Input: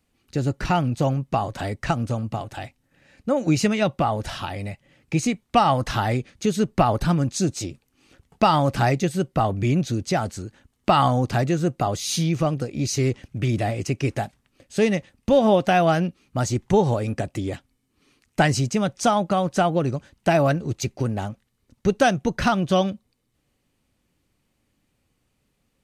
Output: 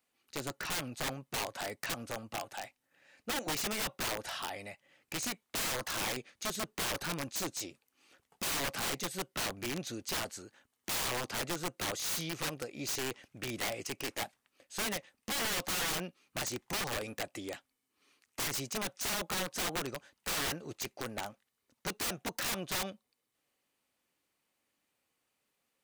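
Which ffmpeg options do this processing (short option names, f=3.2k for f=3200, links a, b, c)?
-filter_complex "[0:a]aemphasis=mode=production:type=riaa,asplit=2[a][b];[b]highpass=f=720:p=1,volume=8dB,asoftclip=type=tanh:threshold=-2dB[c];[a][c]amix=inputs=2:normalize=0,lowpass=f=1.2k:p=1,volume=-6dB,aeval=exprs='(mod(12.6*val(0)+1,2)-1)/12.6':c=same,volume=-7dB"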